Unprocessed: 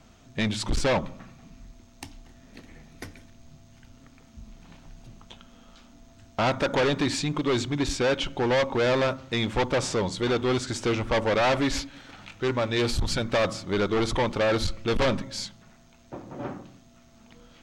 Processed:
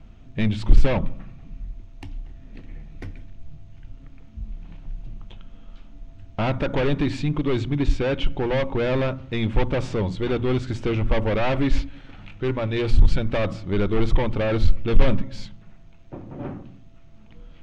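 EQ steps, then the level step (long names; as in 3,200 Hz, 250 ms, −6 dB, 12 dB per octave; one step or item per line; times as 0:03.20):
spectral tilt −4 dB per octave
parametric band 2,700 Hz +9 dB 1.3 octaves
mains-hum notches 60/120/180/240 Hz
−4.5 dB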